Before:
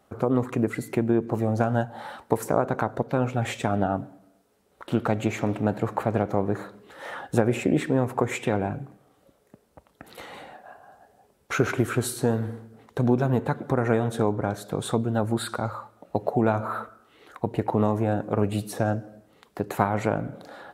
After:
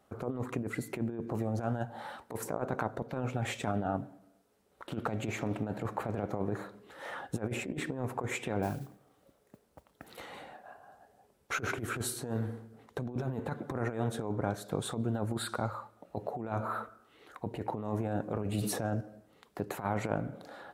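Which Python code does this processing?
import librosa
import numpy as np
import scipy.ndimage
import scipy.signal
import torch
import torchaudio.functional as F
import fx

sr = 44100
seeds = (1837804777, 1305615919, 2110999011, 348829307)

y = fx.over_compress(x, sr, threshold_db=-25.0, ratio=-0.5)
y = fx.mod_noise(y, sr, seeds[0], snr_db=21, at=(8.62, 10.2))
y = fx.sustainer(y, sr, db_per_s=29.0, at=(18.21, 19.01))
y = F.gain(torch.from_numpy(y), -7.5).numpy()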